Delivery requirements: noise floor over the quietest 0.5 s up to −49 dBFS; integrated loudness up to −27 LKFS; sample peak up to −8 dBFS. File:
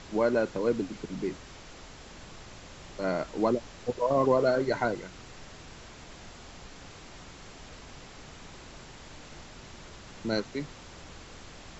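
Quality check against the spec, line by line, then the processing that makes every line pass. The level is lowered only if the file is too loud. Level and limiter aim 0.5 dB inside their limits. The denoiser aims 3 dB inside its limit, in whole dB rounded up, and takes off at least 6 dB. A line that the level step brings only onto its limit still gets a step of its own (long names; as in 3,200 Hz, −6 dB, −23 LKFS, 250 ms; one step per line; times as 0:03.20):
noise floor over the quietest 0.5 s −47 dBFS: out of spec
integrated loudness −29.5 LKFS: in spec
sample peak −13.0 dBFS: in spec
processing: broadband denoise 6 dB, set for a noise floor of −47 dBFS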